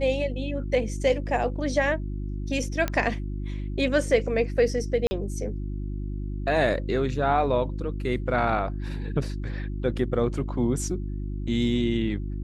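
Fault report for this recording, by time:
hum 50 Hz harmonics 7 -31 dBFS
2.88 s: pop -12 dBFS
5.07–5.11 s: dropout 40 ms

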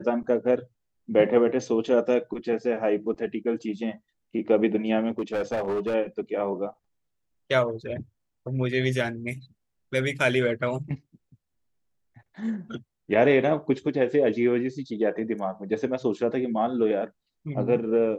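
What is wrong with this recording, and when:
5.18–5.95 s: clipped -23 dBFS

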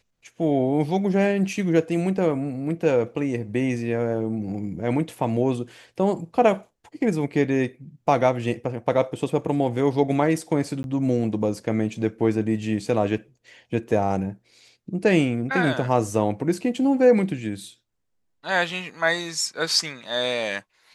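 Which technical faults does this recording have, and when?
10.83–10.84 s: dropout 11 ms

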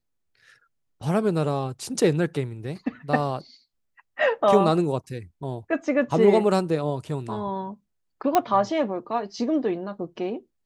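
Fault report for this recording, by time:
8.35 s: pop -6 dBFS

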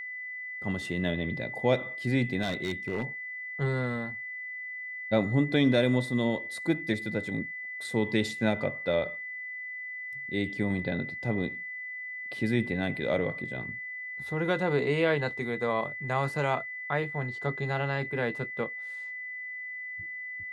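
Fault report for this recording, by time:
whine 2 kHz -36 dBFS
2.41–3.04 s: clipped -25.5 dBFS

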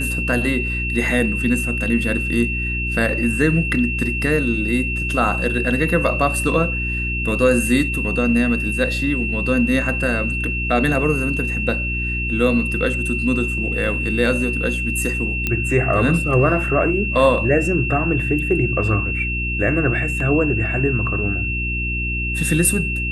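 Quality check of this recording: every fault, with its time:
hum 60 Hz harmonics 6 -25 dBFS
whine 2.7 kHz -23 dBFS
15.47 s: pop -7 dBFS

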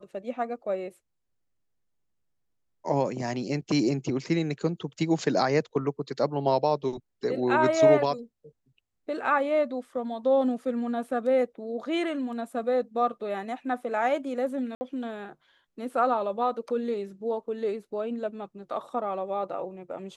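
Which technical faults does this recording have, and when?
14.75–14.81 s: dropout 60 ms

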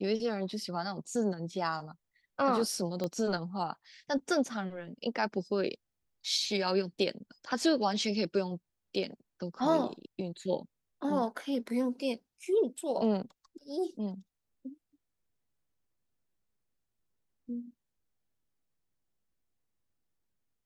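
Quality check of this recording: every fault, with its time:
3.04 s: pop -21 dBFS

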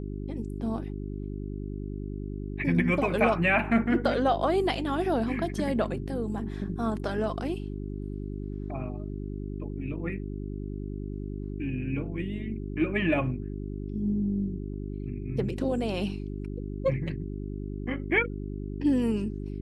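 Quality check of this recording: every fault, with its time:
hum 50 Hz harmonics 8 -35 dBFS

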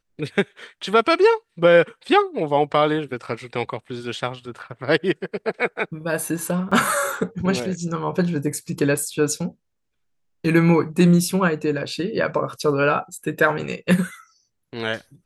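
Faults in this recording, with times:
6.71–6.72 s: dropout 5.6 ms

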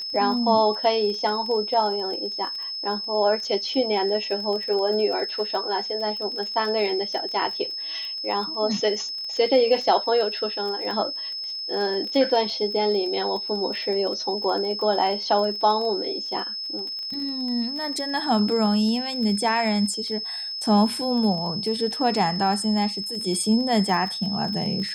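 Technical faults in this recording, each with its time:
crackle 22 per s -30 dBFS
whine 5.2 kHz -29 dBFS

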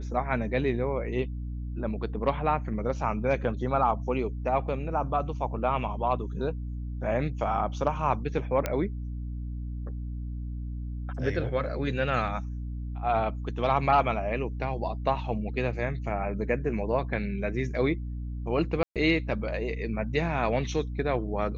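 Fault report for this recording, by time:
hum 60 Hz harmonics 5 -34 dBFS
8.66 s: pop -13 dBFS
18.83–18.96 s: dropout 127 ms

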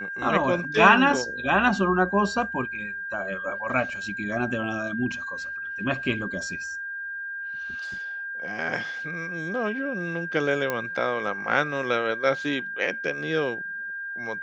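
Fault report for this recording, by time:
whine 1.6 kHz -31 dBFS
10.70 s: pop -12 dBFS

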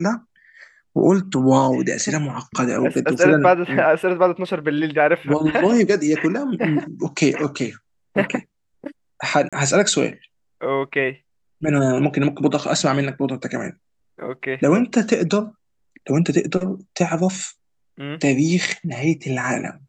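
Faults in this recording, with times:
9.49–9.53 s: dropout 36 ms

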